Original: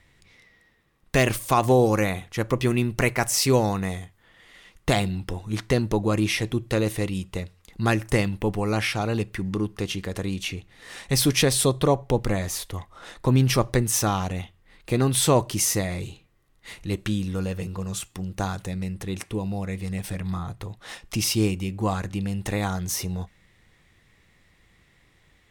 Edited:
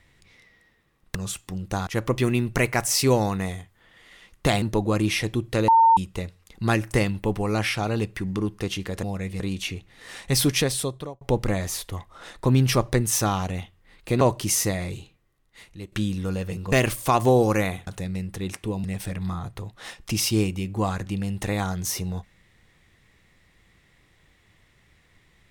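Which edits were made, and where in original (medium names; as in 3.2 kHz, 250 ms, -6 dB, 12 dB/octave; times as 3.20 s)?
1.15–2.30 s: swap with 17.82–18.54 s
5.05–5.80 s: delete
6.86–7.15 s: bleep 908 Hz -12 dBFS
11.23–12.02 s: fade out
15.02–15.31 s: delete
15.89–17.02 s: fade out, to -13 dB
19.51–19.88 s: move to 10.21 s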